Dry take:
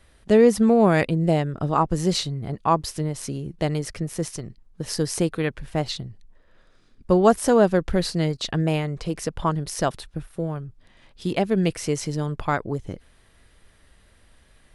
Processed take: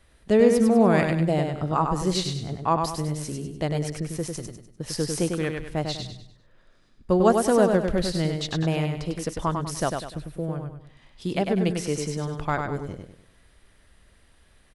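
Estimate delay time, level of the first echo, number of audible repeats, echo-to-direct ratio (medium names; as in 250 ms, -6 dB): 99 ms, -5.0 dB, 4, -4.5 dB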